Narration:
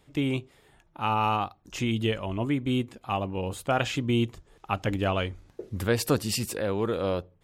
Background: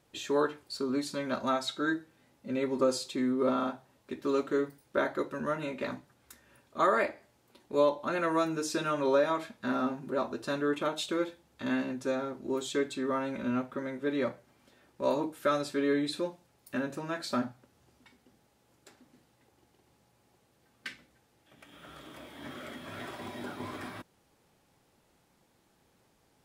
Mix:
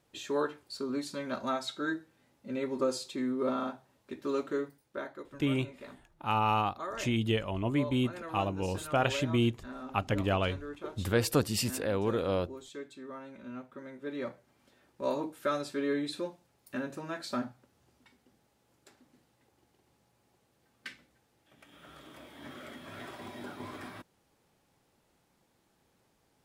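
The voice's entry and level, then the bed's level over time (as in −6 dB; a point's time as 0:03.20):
5.25 s, −2.5 dB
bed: 0:04.52 −3 dB
0:05.22 −13 dB
0:13.42 −13 dB
0:14.61 −3 dB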